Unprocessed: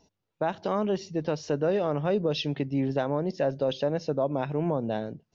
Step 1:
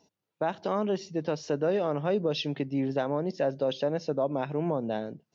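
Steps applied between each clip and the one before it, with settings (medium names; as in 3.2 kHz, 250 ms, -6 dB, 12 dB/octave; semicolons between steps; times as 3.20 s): high-pass 140 Hz; trim -1 dB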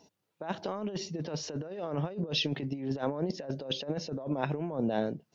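compressor with a negative ratio -32 dBFS, ratio -0.5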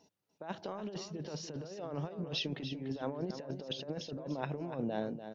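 feedback delay 293 ms, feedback 16%, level -10 dB; trim -6 dB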